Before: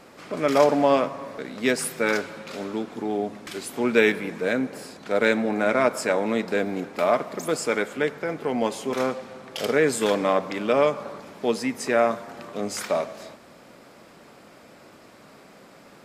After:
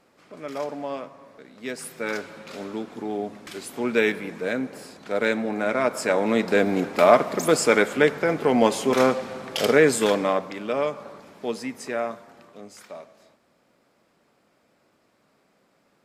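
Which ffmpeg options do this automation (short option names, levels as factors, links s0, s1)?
-af "volume=2,afade=t=in:st=1.56:d=0.96:silence=0.316228,afade=t=in:st=5.82:d=1.01:silence=0.375837,afade=t=out:st=9.45:d=1.1:silence=0.281838,afade=t=out:st=11.63:d=1.11:silence=0.298538"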